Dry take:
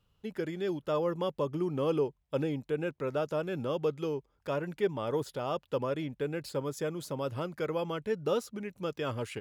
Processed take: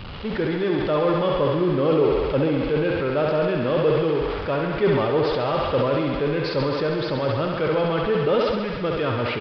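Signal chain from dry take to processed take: zero-crossing step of -36 dBFS; air absorption 120 m; on a send: thinning echo 67 ms, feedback 83%, high-pass 280 Hz, level -4.5 dB; on the sum: downsampling 11025 Hz; sustainer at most 30 dB/s; gain +7 dB

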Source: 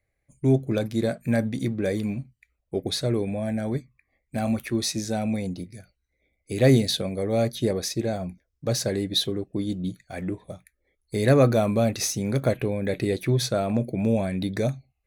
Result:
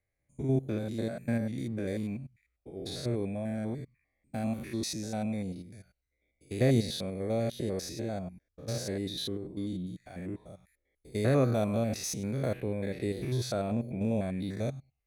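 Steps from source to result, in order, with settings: stepped spectrum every 0.1 s; gain -6 dB

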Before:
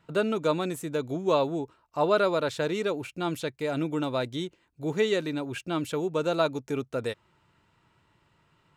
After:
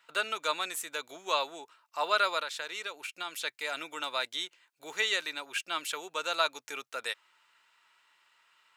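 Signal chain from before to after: HPF 1400 Hz 12 dB/oct; 2.41–3.43 compressor 3:1, threshold -41 dBFS, peak gain reduction 7 dB; gain +5.5 dB

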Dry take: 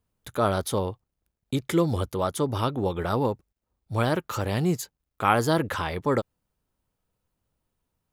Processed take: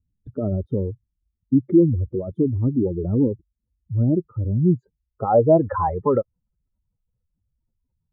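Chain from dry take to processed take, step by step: spectral contrast raised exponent 2.6; low-pass sweep 300 Hz -> 4400 Hz, 4.72–7.39; gain +4 dB

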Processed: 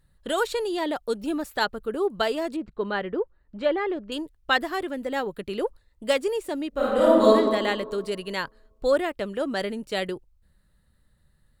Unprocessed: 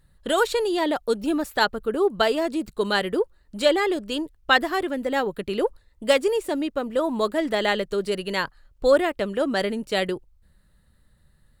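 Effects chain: 2.56–4.12 LPF 2100 Hz 12 dB/oct; 6.69–7.33 reverb throw, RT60 1.6 s, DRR -9.5 dB; gain -4 dB

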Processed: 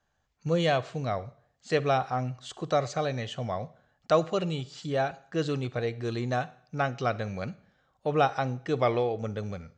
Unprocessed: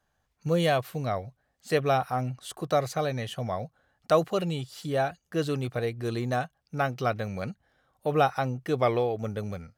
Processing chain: elliptic low-pass 7400 Hz, stop band 50 dB; Schroeder reverb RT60 0.57 s, DRR 17.5 dB

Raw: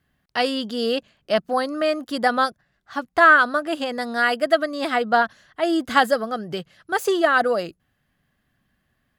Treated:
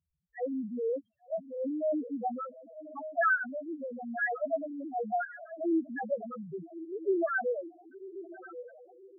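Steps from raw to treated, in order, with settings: diffused feedback echo 1.128 s, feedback 44%, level -11 dB; 1.44–2.11 transient shaper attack -8 dB, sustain +6 dB; rotary speaker horn 0.9 Hz; loudest bins only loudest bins 1; gain -1.5 dB

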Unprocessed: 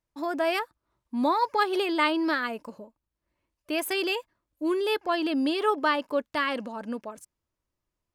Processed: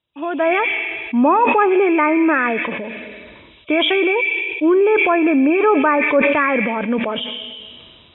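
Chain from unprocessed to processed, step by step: nonlinear frequency compression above 2200 Hz 4:1; HPF 74 Hz; on a send at -20 dB: resonant high shelf 1700 Hz +9.5 dB, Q 3 + reverb RT60 1.1 s, pre-delay 81 ms; on the sum: AGC gain up to 8 dB; in parallel at +2 dB: limiter -14.5 dBFS, peak gain reduction 10 dB; on the sum: bell 430 Hz +2 dB 0.76 oct; treble ducked by the level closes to 1700 Hz, closed at -8 dBFS; sustainer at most 28 dB/s; gain -2.5 dB

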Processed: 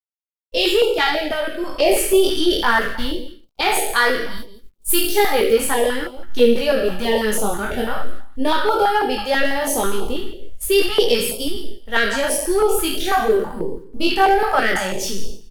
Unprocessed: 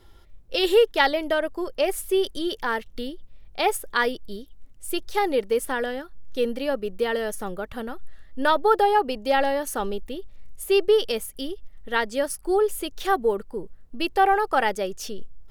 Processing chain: spectral trails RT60 0.71 s; gate -32 dBFS, range -40 dB; 4.37–5.53 high shelf 8600 Hz +10.5 dB; AGC gain up to 11.5 dB; chorus voices 2, 0.18 Hz, delay 20 ms, depth 3.5 ms; in parallel at -5.5 dB: soft clip -16.5 dBFS, distortion -9 dB; on the sum: bit-crush 11-bit; on a send: echo 0.169 s -14.5 dB; on the sum: stepped notch 6.1 Hz 340–1800 Hz

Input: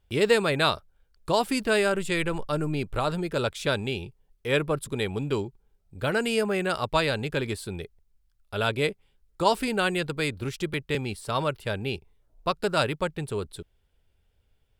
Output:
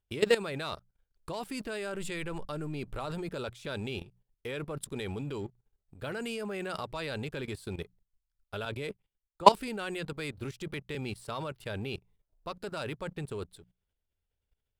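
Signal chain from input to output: notches 60/120/180 Hz; sample leveller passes 1; level quantiser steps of 16 dB; 8.65–9.52 three-band expander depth 100%; gain -4 dB

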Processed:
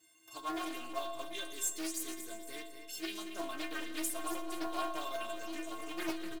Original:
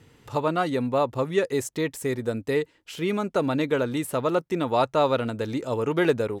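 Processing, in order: tape stop at the end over 0.33 s; RIAA curve recording; in parallel at -11.5 dB: wrapped overs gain 24 dB; on the sum: metallic resonator 320 Hz, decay 0.48 s, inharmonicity 0.03; modulation noise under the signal 23 dB; on a send: feedback echo 0.23 s, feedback 40%, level -9 dB; on the sum: digital reverb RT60 1.6 s, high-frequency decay 0.3×, pre-delay 45 ms, DRR 10 dB; Doppler distortion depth 0.45 ms; gain +3.5 dB

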